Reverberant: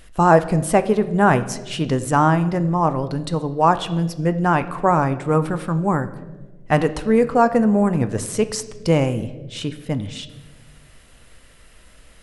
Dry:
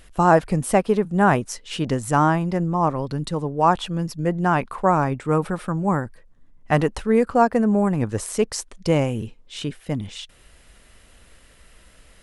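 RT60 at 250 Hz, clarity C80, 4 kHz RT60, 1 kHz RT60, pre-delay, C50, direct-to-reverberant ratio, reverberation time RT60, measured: 1.7 s, 16.0 dB, 0.85 s, 1.1 s, 6 ms, 14.5 dB, 10.5 dB, 1.3 s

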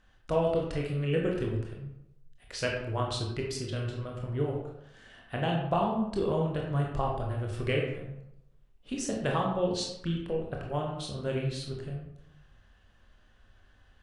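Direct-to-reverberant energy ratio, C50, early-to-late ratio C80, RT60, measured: -1.0 dB, 3.0 dB, 5.5 dB, 0.80 s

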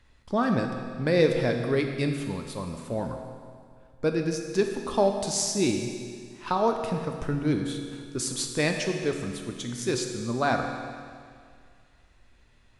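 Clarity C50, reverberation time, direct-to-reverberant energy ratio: 5.0 dB, 2.1 s, 3.5 dB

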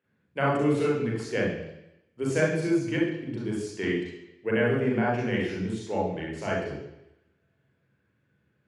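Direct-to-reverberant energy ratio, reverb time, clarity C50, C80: -3.0 dB, 0.90 s, 2.5 dB, 5.5 dB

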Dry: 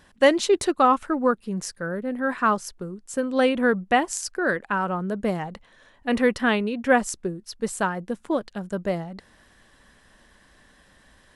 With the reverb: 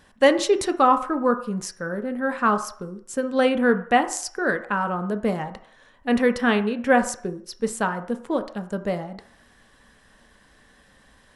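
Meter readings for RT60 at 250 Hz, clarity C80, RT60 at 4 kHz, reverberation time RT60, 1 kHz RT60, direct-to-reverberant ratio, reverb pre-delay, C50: 0.40 s, 16.0 dB, 0.55 s, 0.55 s, 0.55 s, 8.0 dB, 3 ms, 13.0 dB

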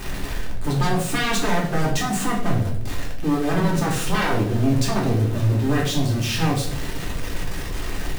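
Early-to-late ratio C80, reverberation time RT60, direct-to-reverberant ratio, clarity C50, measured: 9.5 dB, 0.70 s, -3.0 dB, 6.0 dB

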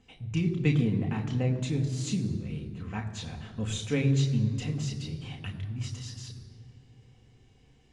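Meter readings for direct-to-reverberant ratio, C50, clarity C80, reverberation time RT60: 2.0 dB, 9.5 dB, 10.5 dB, 2.2 s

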